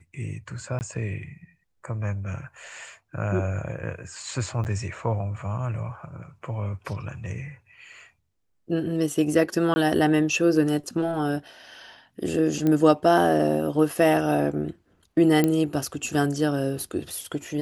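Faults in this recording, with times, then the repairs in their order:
0:00.79–0:00.81: drop-out 19 ms
0:04.64–0:04.65: drop-out 9.1 ms
0:09.74–0:09.76: drop-out 20 ms
0:12.67: click −13 dBFS
0:15.44: click −9 dBFS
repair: click removal
repair the gap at 0:00.79, 19 ms
repair the gap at 0:04.64, 9.1 ms
repair the gap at 0:09.74, 20 ms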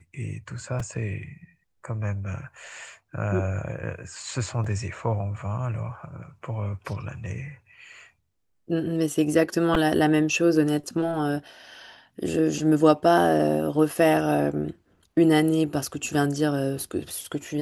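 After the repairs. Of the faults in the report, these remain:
none of them is left

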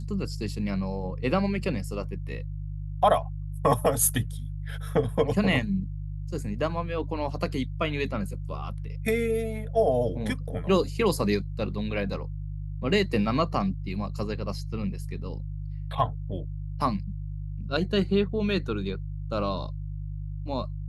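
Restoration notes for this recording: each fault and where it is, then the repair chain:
mains hum 50 Hz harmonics 3 −34 dBFS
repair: hum removal 50 Hz, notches 3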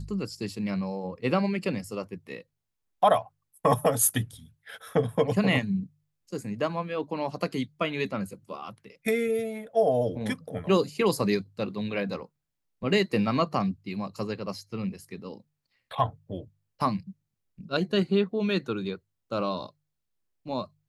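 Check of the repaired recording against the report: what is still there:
none of them is left

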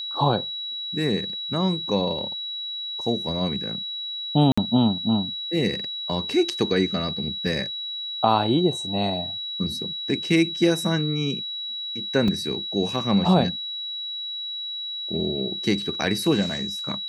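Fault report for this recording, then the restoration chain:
whistle 3,900 Hz −29 dBFS
0:04.52–0:04.58: drop-out 55 ms
0:12.28: drop-out 3.4 ms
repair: notch filter 3,900 Hz, Q 30
repair the gap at 0:04.52, 55 ms
repair the gap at 0:12.28, 3.4 ms

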